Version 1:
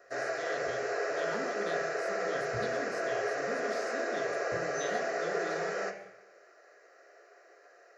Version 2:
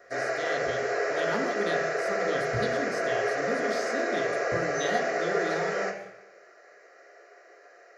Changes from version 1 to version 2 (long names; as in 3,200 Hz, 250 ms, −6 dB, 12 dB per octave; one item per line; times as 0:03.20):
speech +8.5 dB
background: send +6.5 dB